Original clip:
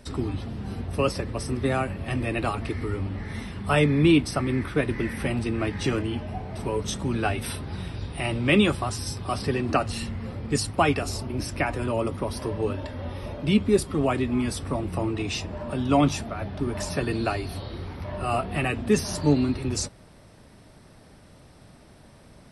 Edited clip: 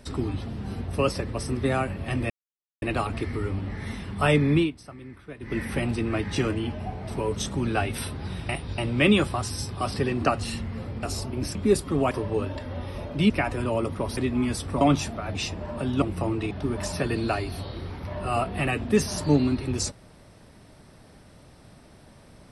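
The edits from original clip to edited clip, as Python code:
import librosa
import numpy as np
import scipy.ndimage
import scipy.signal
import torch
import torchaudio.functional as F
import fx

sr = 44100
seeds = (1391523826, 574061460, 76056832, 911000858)

y = fx.edit(x, sr, fx.insert_silence(at_s=2.3, length_s=0.52),
    fx.fade_down_up(start_s=4.01, length_s=1.05, db=-17.0, fade_s=0.18),
    fx.reverse_span(start_s=7.97, length_s=0.29),
    fx.cut(start_s=10.51, length_s=0.49),
    fx.swap(start_s=11.52, length_s=0.87, other_s=13.58, other_length_s=0.56),
    fx.swap(start_s=14.78, length_s=0.49, other_s=15.94, other_length_s=0.54), tone=tone)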